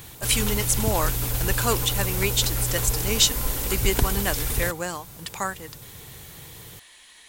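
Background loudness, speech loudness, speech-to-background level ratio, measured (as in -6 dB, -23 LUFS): -25.5 LUFS, -26.0 LUFS, -0.5 dB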